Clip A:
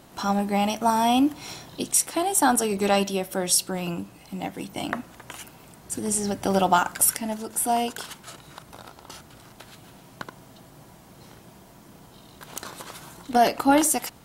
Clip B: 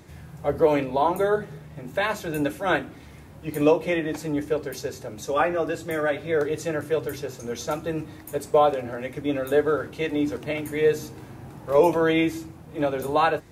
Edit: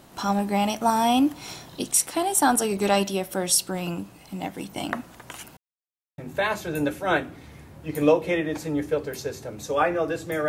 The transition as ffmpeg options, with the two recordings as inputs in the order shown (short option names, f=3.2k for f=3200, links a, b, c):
-filter_complex "[0:a]apad=whole_dur=10.48,atrim=end=10.48,asplit=2[a][b];[a]atrim=end=5.57,asetpts=PTS-STARTPTS,afade=t=out:st=5.566:d=0.004:c=hsin[c];[b]atrim=start=5.57:end=6.18,asetpts=PTS-STARTPTS,volume=0[d];[1:a]atrim=start=1.77:end=6.07,asetpts=PTS-STARTPTS,afade=t=in:d=0.004:c=hsin[e];[c][d][e]concat=n=3:v=0:a=1"